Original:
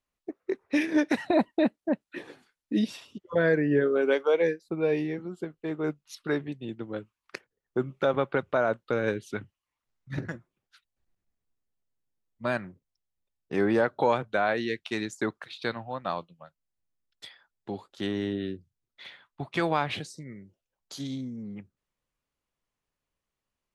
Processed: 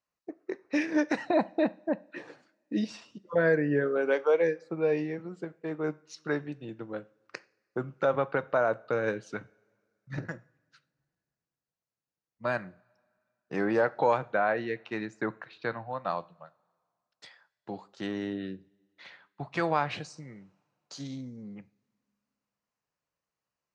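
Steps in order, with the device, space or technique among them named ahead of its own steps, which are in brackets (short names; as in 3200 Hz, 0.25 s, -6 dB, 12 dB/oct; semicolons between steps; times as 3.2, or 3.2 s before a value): car door speaker (speaker cabinet 100–6900 Hz, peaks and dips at 100 Hz -6 dB, 240 Hz -7 dB, 370 Hz -5 dB, 2200 Hz -3 dB, 3400 Hz -10 dB); 14.32–15.93 tone controls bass +2 dB, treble -15 dB; two-slope reverb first 0.4 s, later 2.2 s, from -22 dB, DRR 15.5 dB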